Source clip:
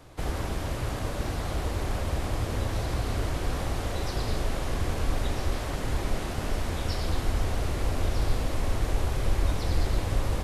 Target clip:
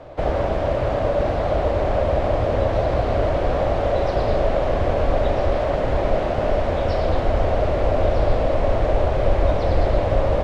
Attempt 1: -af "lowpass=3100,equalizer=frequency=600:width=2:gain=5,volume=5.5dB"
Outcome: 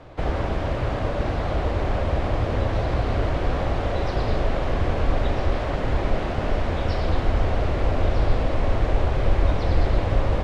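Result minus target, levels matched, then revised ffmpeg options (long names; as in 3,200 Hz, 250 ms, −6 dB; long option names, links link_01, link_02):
500 Hz band −4.5 dB
-af "lowpass=3100,equalizer=frequency=600:width=2:gain=15.5,volume=5.5dB"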